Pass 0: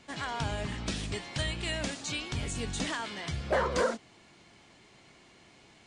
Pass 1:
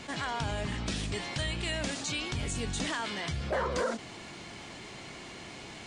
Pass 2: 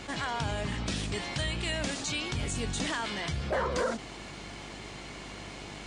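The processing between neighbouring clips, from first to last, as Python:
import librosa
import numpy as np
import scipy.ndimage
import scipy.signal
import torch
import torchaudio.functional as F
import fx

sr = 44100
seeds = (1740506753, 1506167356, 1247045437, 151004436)

y1 = fx.env_flatten(x, sr, amount_pct=50)
y1 = y1 * librosa.db_to_amplitude(-4.0)
y2 = fx.dmg_buzz(y1, sr, base_hz=50.0, harmonics=31, level_db=-50.0, tilt_db=-4, odd_only=False)
y2 = y2 * librosa.db_to_amplitude(1.0)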